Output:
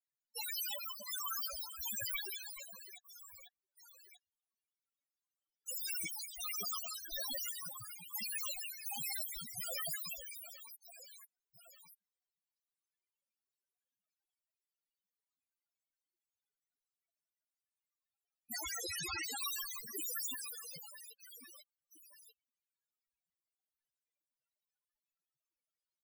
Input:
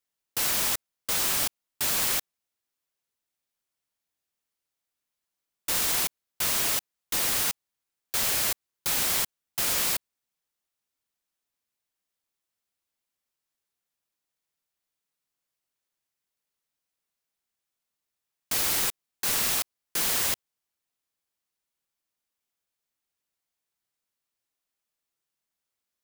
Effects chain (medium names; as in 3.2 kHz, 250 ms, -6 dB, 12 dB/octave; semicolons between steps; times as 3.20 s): reverse bouncing-ball echo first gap 180 ms, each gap 1.4×, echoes 5; 18.56–19.39 s: Schmitt trigger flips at -41.5 dBFS; loudest bins only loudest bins 4; trim +5 dB